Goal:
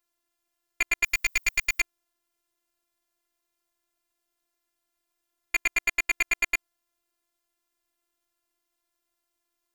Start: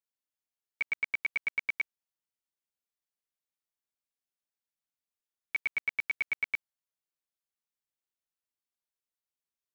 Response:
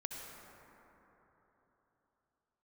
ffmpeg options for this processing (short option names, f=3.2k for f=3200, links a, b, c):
-filter_complex "[0:a]asettb=1/sr,asplit=3[a][b][c];[a]atrim=end=1.044[d];[b]atrim=start=1.04:end=1.81,asetpts=PTS-STARTPTS,afade=t=in:d=0.004:c=qsin,afade=t=out:st=0.766:d=0.004:c=qsin,aemphasis=mode=production:type=riaa[e];[c]atrim=start=1.806[f];[d][e]acrossfade=d=0.004:c1=hsin:c2=qsin[g];[g][f]acrossfade=d=0.004:c1=qsin:c2=hsin,aeval=exprs='0.141*(cos(1*acos(clip(val(0)/0.141,-1,1)))-cos(1*PI/2))+0.0158*(cos(2*acos(clip(val(0)/0.141,-1,1)))-cos(2*PI/2))+0.0355*(cos(5*acos(clip(val(0)/0.141,-1,1)))-cos(5*PI/2))':c=same,asplit=2[h][i];[i]adynamicsmooth=sensitivity=7:basefreq=2.3k,volume=-2dB[j];[h][j]amix=inputs=2:normalize=0,afftfilt=real='hypot(re,im)*cos(PI*b)':imag='0':win_size=512:overlap=0.75,volume=8dB"